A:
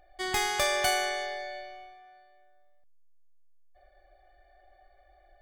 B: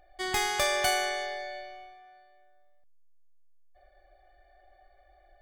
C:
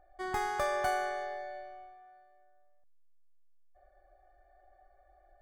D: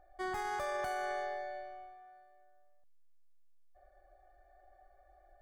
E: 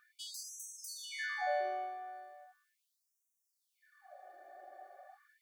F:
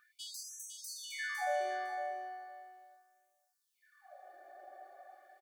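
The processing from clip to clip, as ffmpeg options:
ffmpeg -i in.wav -af anull out.wav
ffmpeg -i in.wav -af "highshelf=frequency=1900:width_type=q:width=1.5:gain=-11,volume=-3.5dB" out.wav
ffmpeg -i in.wav -af "alimiter=level_in=5.5dB:limit=-24dB:level=0:latency=1:release=33,volume=-5.5dB" out.wav
ffmpeg -i in.wav -af "afftfilt=real='re*gte(b*sr/1024,220*pow(5700/220,0.5+0.5*sin(2*PI*0.38*pts/sr)))':imag='im*gte(b*sr/1024,220*pow(5700/220,0.5+0.5*sin(2*PI*0.38*pts/sr)))':win_size=1024:overlap=0.75,volume=10.5dB" out.wav
ffmpeg -i in.wav -af "aecho=1:1:506|1012:0.398|0.0597" out.wav

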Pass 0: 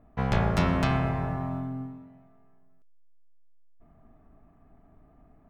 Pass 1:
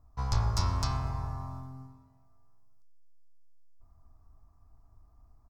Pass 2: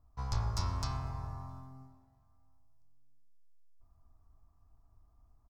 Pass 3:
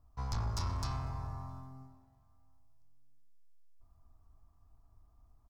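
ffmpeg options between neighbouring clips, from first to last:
ffmpeg -i in.wav -af "firequalizer=gain_entry='entry(100,0);entry(160,-19);entry(370,-16);entry(600,-18);entry(1000,-3);entry(1700,-17);entry(3000,-15);entry(4900,8);entry(9300,0)':delay=0.05:min_phase=1,volume=1.5dB" out.wav
ffmpeg -i in.wav -filter_complex "[0:a]asplit=2[link_01][link_02];[link_02]adelay=662,lowpass=frequency=830:poles=1,volume=-22.5dB,asplit=2[link_03][link_04];[link_04]adelay=662,lowpass=frequency=830:poles=1,volume=0.29[link_05];[link_01][link_03][link_05]amix=inputs=3:normalize=0,volume=-5.5dB" out.wav
ffmpeg -i in.wav -af "asoftclip=type=tanh:threshold=-29.5dB,volume=1dB" out.wav

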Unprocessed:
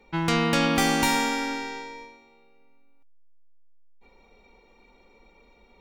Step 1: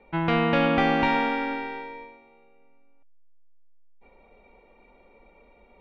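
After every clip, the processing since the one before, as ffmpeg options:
ffmpeg -i in.wav -af "lowpass=frequency=3000:width=0.5412,lowpass=frequency=3000:width=1.3066,equalizer=frequency=620:width=3.1:gain=7.5" out.wav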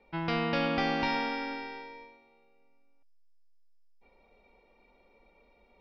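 ffmpeg -i in.wav -af "lowpass=frequency=5100:width_type=q:width=11,volume=-8dB" out.wav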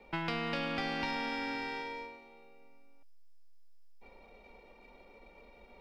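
ffmpeg -i in.wav -filter_complex "[0:a]aeval=exprs='if(lt(val(0),0),0.708*val(0),val(0))':channel_layout=same,acrossover=split=200|1300[link_01][link_02][link_03];[link_01]acompressor=threshold=-54dB:ratio=4[link_04];[link_02]acompressor=threshold=-48dB:ratio=4[link_05];[link_03]acompressor=threshold=-47dB:ratio=4[link_06];[link_04][link_05][link_06]amix=inputs=3:normalize=0,volume=8dB" out.wav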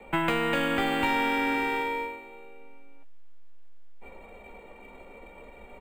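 ffmpeg -i in.wav -filter_complex "[0:a]acrossover=split=350|1200|3600[link_01][link_02][link_03][link_04];[link_04]acrusher=samples=8:mix=1:aa=0.000001[link_05];[link_01][link_02][link_03][link_05]amix=inputs=4:normalize=0,asplit=2[link_06][link_07];[link_07]adelay=15,volume=-8dB[link_08];[link_06][link_08]amix=inputs=2:normalize=0,volume=9dB" out.wav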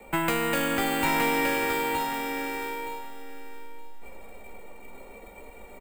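ffmpeg -i in.wav -filter_complex "[0:a]aexciter=amount=3.1:drive=6.6:freq=4600,asplit=2[link_01][link_02];[link_02]aecho=0:1:919|1838|2757:0.562|0.112|0.0225[link_03];[link_01][link_03]amix=inputs=2:normalize=0" out.wav

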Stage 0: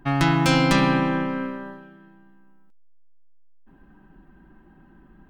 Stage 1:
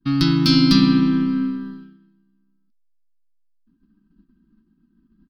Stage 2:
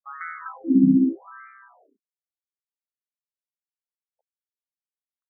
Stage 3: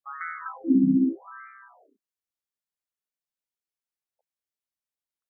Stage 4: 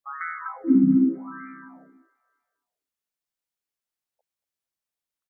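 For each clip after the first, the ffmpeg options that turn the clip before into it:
ffmpeg -i in.wav -af "agate=range=-33dB:threshold=-41dB:ratio=3:detection=peak,firequalizer=gain_entry='entry(140,0);entry(230,12);entry(590,-27);entry(1200,-3);entry(1900,-10);entry(4700,15);entry(7100,-14);entry(11000,0)':delay=0.05:min_phase=1" out.wav
ffmpeg -i in.wav -af "aeval=exprs='sgn(val(0))*max(abs(val(0))-0.00473,0)':channel_layout=same,afftfilt=real='re*between(b*sr/1024,230*pow(1700/230,0.5+0.5*sin(2*PI*0.83*pts/sr))/1.41,230*pow(1700/230,0.5+0.5*sin(2*PI*0.83*pts/sr))*1.41)':imag='im*between(b*sr/1024,230*pow(1700/230,0.5+0.5*sin(2*PI*0.83*pts/sr))/1.41,230*pow(1700/230,0.5+0.5*sin(2*PI*0.83*pts/sr))*1.41)':win_size=1024:overlap=0.75" out.wav
ffmpeg -i in.wav -af "alimiter=limit=-12dB:level=0:latency=1:release=474" out.wav
ffmpeg -i in.wav -af "aecho=1:1:232|464|696|928:0.0708|0.0418|0.0246|0.0145,volume=2.5dB" out.wav

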